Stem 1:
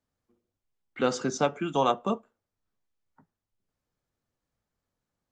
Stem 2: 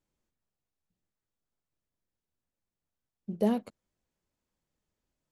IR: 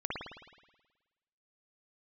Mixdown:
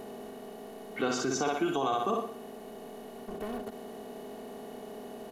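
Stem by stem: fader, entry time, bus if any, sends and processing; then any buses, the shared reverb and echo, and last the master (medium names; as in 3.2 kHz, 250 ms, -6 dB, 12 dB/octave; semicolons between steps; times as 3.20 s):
+0.5 dB, 0.00 s, no send, echo send -5 dB, none
-19.0 dB, 0.00 s, no send, no echo send, spectral levelling over time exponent 0.2; waveshaping leveller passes 3; treble shelf 9.1 kHz +7.5 dB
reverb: none
echo: feedback delay 60 ms, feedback 40%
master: comb 2.7 ms, depth 64%; peak limiter -20 dBFS, peak gain reduction 11 dB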